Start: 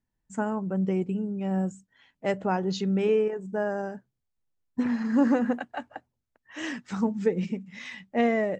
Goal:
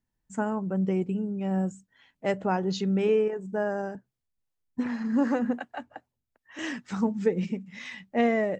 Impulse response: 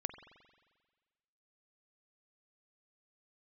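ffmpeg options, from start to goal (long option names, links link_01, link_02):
-filter_complex "[0:a]asettb=1/sr,asplit=3[link_01][link_02][link_03];[link_01]atrim=end=3.954[link_04];[link_02]atrim=start=3.95:end=6.59,asetpts=PTS-STARTPTS,afade=type=in:duration=0.004:curve=qsin,afade=type=out:start_time=2.636:duration=0.004:curve=qsin,acrossover=split=430[link_05][link_06];[link_05]aeval=exprs='val(0)*(1-0.5/2+0.5/2*cos(2*PI*2.6*n/s))':channel_layout=same[link_07];[link_06]aeval=exprs='val(0)*(1-0.5/2-0.5/2*cos(2*PI*2.6*n/s))':channel_layout=same[link_08];[link_07][link_08]amix=inputs=2:normalize=0[link_09];[link_03]atrim=start=6.586[link_10];[link_04][link_09]acrossfade=duration=0.004:curve1=hsin:curve2=qsin[link_11];[link_11][link_10]acrossfade=duration=0.004:curve1=qsin:curve2=hsin"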